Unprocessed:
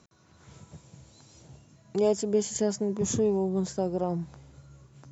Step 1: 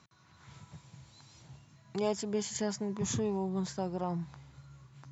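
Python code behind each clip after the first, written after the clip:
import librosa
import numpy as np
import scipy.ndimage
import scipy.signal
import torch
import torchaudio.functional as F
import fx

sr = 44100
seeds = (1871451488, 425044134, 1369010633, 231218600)

y = fx.graphic_eq_10(x, sr, hz=(125, 500, 1000, 2000, 4000), db=(7, -4, 8, 7, 7))
y = y * librosa.db_to_amplitude(-7.5)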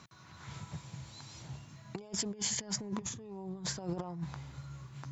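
y = fx.over_compress(x, sr, threshold_db=-39.0, ratio=-0.5)
y = y * librosa.db_to_amplitude(1.5)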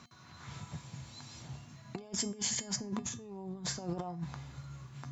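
y = fx.comb_fb(x, sr, f0_hz=240.0, decay_s=0.3, harmonics='odd', damping=0.0, mix_pct=70)
y = y * librosa.db_to_amplitude(9.5)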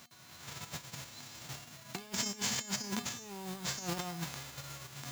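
y = fx.envelope_flatten(x, sr, power=0.3)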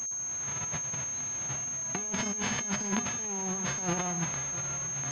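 y = fx.backlash(x, sr, play_db=-51.5)
y = y + 10.0 ** (-16.5 / 20.0) * np.pad(y, (int(659 * sr / 1000.0), 0))[:len(y)]
y = fx.pwm(y, sr, carrier_hz=6400.0)
y = y * librosa.db_to_amplitude(6.5)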